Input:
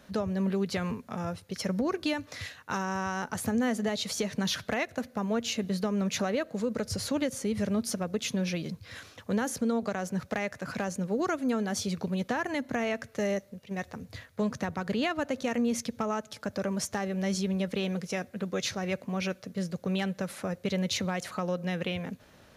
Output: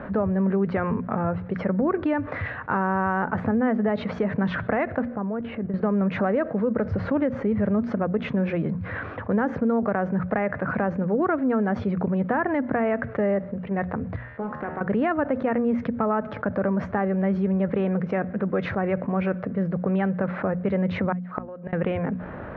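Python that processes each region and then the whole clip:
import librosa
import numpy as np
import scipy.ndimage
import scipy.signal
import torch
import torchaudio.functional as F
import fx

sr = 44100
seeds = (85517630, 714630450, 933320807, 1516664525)

y = fx.chain(x, sr, fx.level_steps(step_db=13),
    fx.air_absorb(metres=390.0), at=(5.15, 5.74))
y = fx.chain(y, sr, fx.low_shelf(hz=190.0, db=-11.0),
    fx.comb_fb(f0_hz=76.0, decay_s=1.0, harmonics='all', damping=0.0, mix_pct=80),
    fx.doppler_dist(depth_ms=0.31), at=(14.16, 14.81))
y = fx.chain(y, sr, fx.low_shelf(hz=130.0, db=-9.0),
    fx.gate_flip(shuts_db=-27.0, range_db=-28), at=(21.12, 21.73))
y = scipy.signal.sosfilt(scipy.signal.butter(4, 1700.0, 'lowpass', fs=sr, output='sos'), y)
y = fx.hum_notches(y, sr, base_hz=60, count=4)
y = fx.env_flatten(y, sr, amount_pct=50)
y = y * librosa.db_to_amplitude(5.0)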